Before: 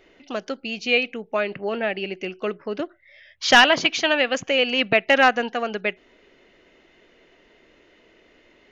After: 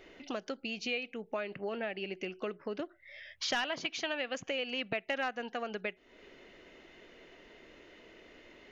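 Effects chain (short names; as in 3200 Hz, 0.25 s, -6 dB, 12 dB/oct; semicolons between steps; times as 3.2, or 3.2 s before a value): compressor 3:1, threshold -38 dBFS, peak gain reduction 21 dB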